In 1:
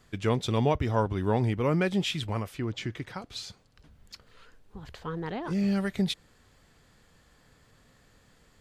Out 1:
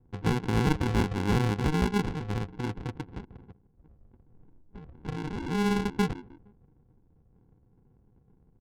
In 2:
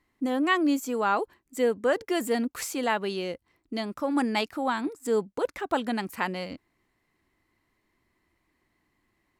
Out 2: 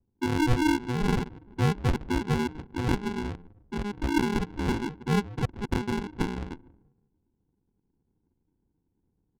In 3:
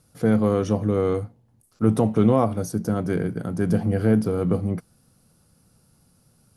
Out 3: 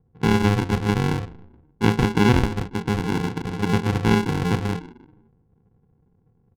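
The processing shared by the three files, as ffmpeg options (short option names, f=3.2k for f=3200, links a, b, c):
-filter_complex "[0:a]asplit=5[a][b][c][d][e];[b]adelay=153,afreqshift=73,volume=-18dB[f];[c]adelay=306,afreqshift=146,volume=-24.9dB[g];[d]adelay=459,afreqshift=219,volume=-31.9dB[h];[e]adelay=612,afreqshift=292,volume=-38.8dB[i];[a][f][g][h][i]amix=inputs=5:normalize=0,aresample=8000,acrusher=samples=13:mix=1:aa=0.000001,aresample=44100,adynamicsmooth=sensitivity=5.5:basefreq=570"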